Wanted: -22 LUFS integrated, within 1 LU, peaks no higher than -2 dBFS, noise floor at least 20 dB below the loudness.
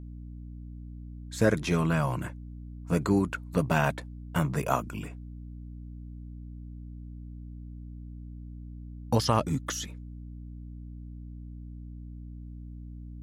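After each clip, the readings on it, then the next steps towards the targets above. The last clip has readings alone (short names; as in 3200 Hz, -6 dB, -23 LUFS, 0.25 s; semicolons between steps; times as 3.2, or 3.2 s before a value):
hum 60 Hz; harmonics up to 300 Hz; hum level -40 dBFS; loudness -29.0 LUFS; peak -9.0 dBFS; loudness target -22.0 LUFS
-> notches 60/120/180/240/300 Hz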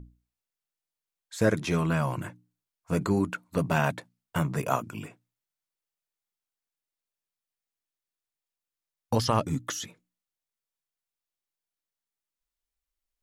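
hum none; loudness -28.5 LUFS; peak -9.5 dBFS; loudness target -22.0 LUFS
-> gain +6.5 dB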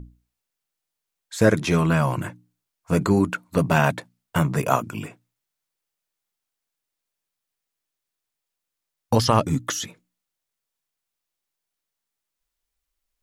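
loudness -22.0 LUFS; peak -3.0 dBFS; noise floor -84 dBFS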